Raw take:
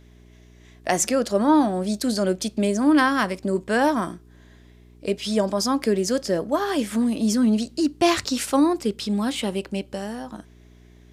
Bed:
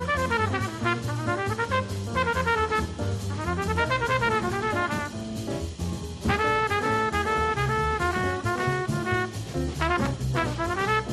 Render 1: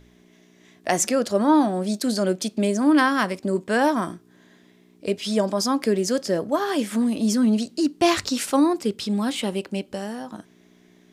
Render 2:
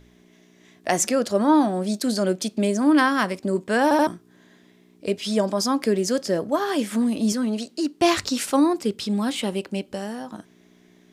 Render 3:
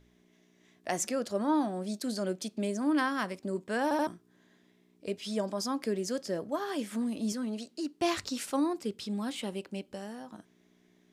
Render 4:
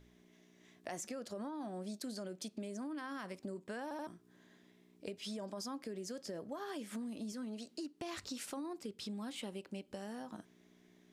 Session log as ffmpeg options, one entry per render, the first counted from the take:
ffmpeg -i in.wav -af "bandreject=frequency=60:width_type=h:width=4,bandreject=frequency=120:width_type=h:width=4" out.wav
ffmpeg -i in.wav -filter_complex "[0:a]asettb=1/sr,asplit=3[link_01][link_02][link_03];[link_01]atrim=end=7.324[link_04];[link_02]atrim=start=7.32:end=8.01,asetpts=PTS-STARTPTS,afade=type=in:duration=0.004:curve=qsin,afade=type=out:start_time=0.686:duration=0.004:curve=qsin,bass=frequency=250:gain=-10,treble=frequency=4000:gain=-2[link_05];[link_03]atrim=start=8.006[link_06];[link_04][link_05]acrossfade=duration=0.004:curve1=hsin:curve2=qsin[link_07];[link_07][link_06]acrossfade=duration=0.004:curve1=qsin:curve2=hsin,asplit=4[link_08][link_09][link_10][link_11];[link_08]atrim=end=3.912[link_12];[link_09]atrim=start=3.828:end=3.912[link_13];[link_10]atrim=start=3.828:end=3.912[link_14];[link_11]atrim=start=4.068[link_15];[link_12][link_13]acrossfade=duration=0.004:curve1=hsin:curve2=hsin[link_16];[link_16][link_14]acrossfade=duration=0.004:curve1=hsin:curve2=hsin[link_17];[link_17][link_15]acrossfade=duration=0.004:curve1=hsin:curve2=hsin" out.wav
ffmpeg -i in.wav -af "volume=-10.5dB" out.wav
ffmpeg -i in.wav -af "alimiter=level_in=1.5dB:limit=-24dB:level=0:latency=1:release=23,volume=-1.5dB,acompressor=threshold=-41dB:ratio=6" out.wav

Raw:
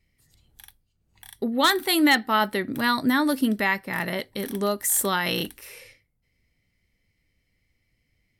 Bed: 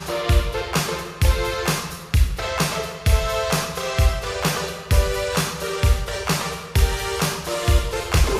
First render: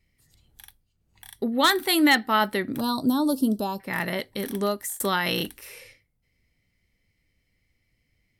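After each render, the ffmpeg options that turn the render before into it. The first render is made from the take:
ffmpeg -i in.wav -filter_complex "[0:a]asettb=1/sr,asplit=3[link_01][link_02][link_03];[link_01]atrim=end=2.804[link_04];[link_02]atrim=start=2.8:end=3.8,asetpts=PTS-STARTPTS,afade=type=in:duration=0.004:curve=qsin,afade=type=out:start_time=0.996:duration=0.004:curve=qsin,asuperstop=centerf=2000:order=4:qfactor=0.65[link_05];[link_03]atrim=start=3.796[link_06];[link_04][link_05]acrossfade=duration=0.004:curve1=hsin:curve2=qsin[link_07];[link_07][link_06]acrossfade=duration=0.004:curve1=qsin:curve2=hsin,asplit=2[link_08][link_09];[link_08]atrim=end=5,asetpts=PTS-STARTPTS,afade=type=out:start_time=4.57:duration=0.43:curve=qsin[link_10];[link_09]atrim=start=5,asetpts=PTS-STARTPTS,afade=type=in:duration=0.004:curve=hsin[link_11];[link_10][link_11]concat=n=2:v=0:a=1" out.wav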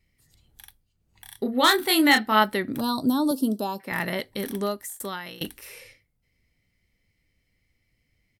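ffmpeg -i in.wav -filter_complex "[0:a]asplit=3[link_01][link_02][link_03];[link_01]afade=type=out:start_time=1.3:duration=0.02[link_04];[link_02]asplit=2[link_05][link_06];[link_06]adelay=28,volume=-5dB[link_07];[link_05][link_07]amix=inputs=2:normalize=0,afade=type=in:start_time=1.3:duration=0.02,afade=type=out:start_time=2.42:duration=0.02[link_08];[link_03]afade=type=in:start_time=2.42:duration=0.02[link_09];[link_04][link_08][link_09]amix=inputs=3:normalize=0,asettb=1/sr,asplit=3[link_10][link_11][link_12];[link_10]atrim=end=3.314[link_13];[link_11]atrim=start=3.31:end=3.92,asetpts=PTS-STARTPTS,afade=type=in:duration=0.004:curve=qsin,afade=type=out:start_time=0.606:duration=0.004:curve=qsin,highpass=190[link_14];[link_12]atrim=start=3.916[link_15];[link_13][link_14]acrossfade=duration=0.004:curve1=hsin:curve2=qsin[link_16];[link_16][link_15]acrossfade=duration=0.004:curve1=qsin:curve2=hsin,asplit=2[link_17][link_18];[link_17]atrim=end=5.41,asetpts=PTS-STARTPTS,afade=type=out:start_time=4.46:duration=0.95:silence=0.0891251[link_19];[link_18]atrim=start=5.41,asetpts=PTS-STARTPTS,afade=type=in:duration=0.004:curve=hsin:silence=0.0891251[link_20];[link_19][link_20]concat=n=2:v=0:a=1" out.wav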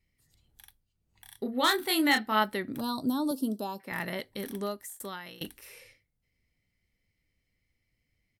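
ffmpeg -i in.wav -af "volume=-6.5dB" out.wav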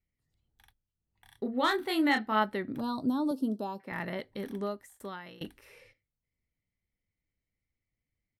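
ffmpeg -i in.wav -af "agate=range=-9dB:threshold=-56dB:ratio=16:detection=peak,lowpass=frequency=1800:poles=1" out.wav

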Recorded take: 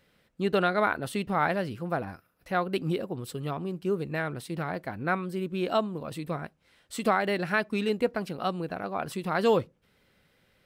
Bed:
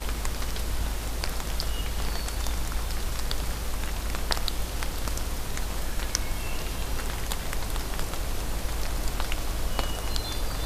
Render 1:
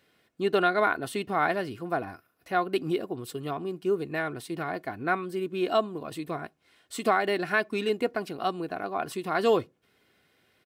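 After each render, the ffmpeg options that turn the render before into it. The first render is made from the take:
ffmpeg -i in.wav -af "highpass=120,aecho=1:1:2.8:0.46" out.wav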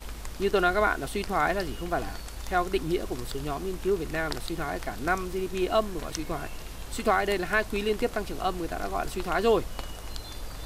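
ffmpeg -i in.wav -i bed.wav -filter_complex "[1:a]volume=-8.5dB[link_01];[0:a][link_01]amix=inputs=2:normalize=0" out.wav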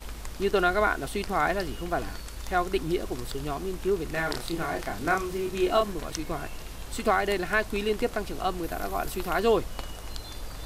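ffmpeg -i in.wav -filter_complex "[0:a]asettb=1/sr,asplit=3[link_01][link_02][link_03];[link_01]atrim=end=1.994[link_04];[link_02]atrim=start=1.99:end=2.45,asetpts=PTS-STARTPTS,afade=type=in:duration=0.004:curve=qsin,afade=type=out:start_time=0.456:duration=0.004:curve=qsin,equalizer=frequency=750:width_type=o:width=0.26:gain=-7[link_05];[link_03]atrim=start=2.446[link_06];[link_04][link_05]acrossfade=duration=0.004:curve1=hsin:curve2=qsin[link_07];[link_07][link_06]acrossfade=duration=0.004:curve1=qsin:curve2=hsin,asettb=1/sr,asplit=3[link_08][link_09][link_10];[link_08]atrim=end=4.114[link_11];[link_09]atrim=start=4.11:end=5.93,asetpts=PTS-STARTPTS,afade=type=in:duration=0.004:curve=qsin,afade=type=out:start_time=1.816:duration=0.004:curve=qsin,asplit=2[link_12][link_13];[link_13]adelay=30,volume=-4dB[link_14];[link_12][link_14]amix=inputs=2:normalize=0,atrim=end_sample=80262[link_15];[link_10]atrim=start=5.926[link_16];[link_11][link_15]acrossfade=duration=0.004:curve1=hsin:curve2=qsin[link_17];[link_17][link_16]acrossfade=duration=0.004:curve1=qsin:curve2=hsin,asettb=1/sr,asplit=3[link_18][link_19][link_20];[link_18]atrim=end=8.634[link_21];[link_19]atrim=start=8.63:end=9.4,asetpts=PTS-STARTPTS,afade=type=in:duration=0.004:curve=qsin,afade=type=out:start_time=0.766:duration=0.004:curve=qsin,equalizer=frequency=13000:width=1.6:gain=9.5[link_22];[link_20]atrim=start=9.396[link_23];[link_21][link_22]acrossfade=duration=0.004:curve1=hsin:curve2=qsin[link_24];[link_24][link_23]acrossfade=duration=0.004:curve1=qsin:curve2=hsin" out.wav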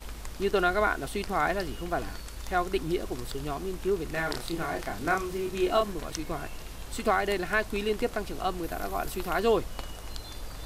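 ffmpeg -i in.wav -af "volume=-1.5dB" out.wav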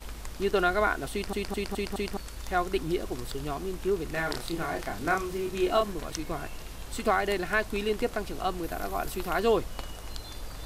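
ffmpeg -i in.wav -filter_complex "[0:a]asplit=6[link_01][link_02][link_03][link_04][link_05][link_06];[link_01]atrim=end=1.332[link_07];[link_02]atrim=start=1.118:end=1.332[link_08];[link_03]atrim=start=1.118:end=1.332[link_09];[link_04]atrim=start=1.118:end=1.332[link_10];[link_05]atrim=start=1.118:end=1.332[link_11];[link_06]atrim=start=2.168[link_12];[link_07][link_08]acrossfade=duration=0.004:curve1=hsin:curve2=hsin[link_13];[link_13][link_09]acrossfade=duration=0.004:curve1=hsin:curve2=hsin[link_14];[link_14][link_10]acrossfade=duration=0.004:curve1=hsin:curve2=hsin[link_15];[link_15][link_11]acrossfade=duration=0.004:curve1=hsin:curve2=hsin[link_16];[link_16][link_12]acrossfade=duration=0.004:curve1=hsin:curve2=hsin" out.wav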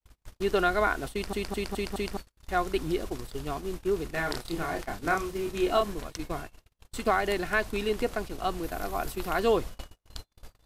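ffmpeg -i in.wav -af "agate=range=-46dB:threshold=-34dB:ratio=16:detection=peak" out.wav

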